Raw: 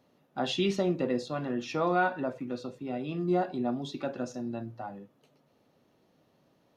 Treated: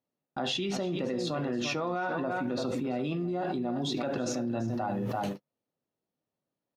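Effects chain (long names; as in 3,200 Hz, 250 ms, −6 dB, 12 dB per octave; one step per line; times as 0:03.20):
multi-tap delay 75/339 ms −20/−13 dB
noise gate −54 dBFS, range −54 dB
envelope flattener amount 100%
level −8 dB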